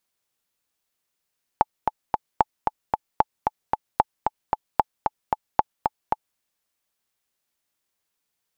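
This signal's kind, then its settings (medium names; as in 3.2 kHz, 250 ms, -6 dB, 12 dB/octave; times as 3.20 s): metronome 226 bpm, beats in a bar 3, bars 6, 862 Hz, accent 4.5 dB -2.5 dBFS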